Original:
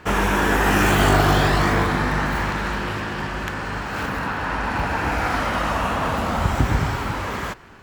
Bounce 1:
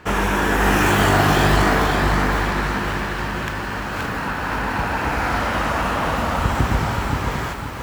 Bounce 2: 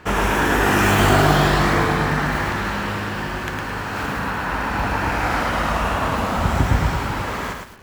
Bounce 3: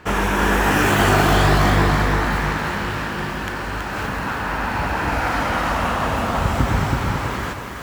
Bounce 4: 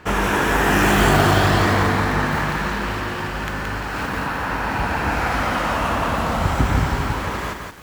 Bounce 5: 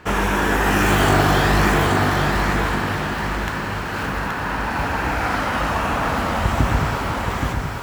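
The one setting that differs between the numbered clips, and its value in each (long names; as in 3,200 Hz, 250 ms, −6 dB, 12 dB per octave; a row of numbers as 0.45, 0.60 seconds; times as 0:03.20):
feedback echo at a low word length, delay time: 526, 108, 326, 173, 825 milliseconds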